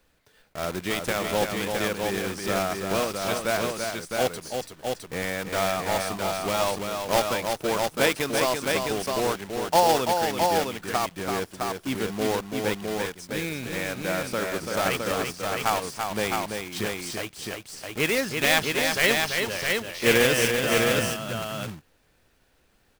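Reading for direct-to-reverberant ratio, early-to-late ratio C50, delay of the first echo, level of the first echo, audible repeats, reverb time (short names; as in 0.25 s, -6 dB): none, none, 0.336 s, -5.5 dB, 2, none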